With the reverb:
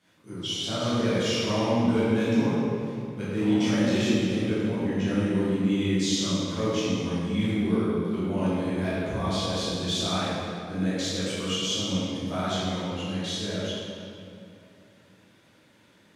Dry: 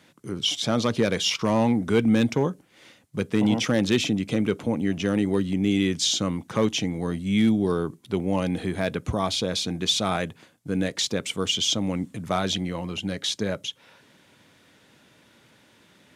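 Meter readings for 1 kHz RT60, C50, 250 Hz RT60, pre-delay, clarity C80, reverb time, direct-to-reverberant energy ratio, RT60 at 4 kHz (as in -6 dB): 2.5 s, -4.5 dB, 3.2 s, 8 ms, -2.0 dB, 2.7 s, -12.0 dB, 1.7 s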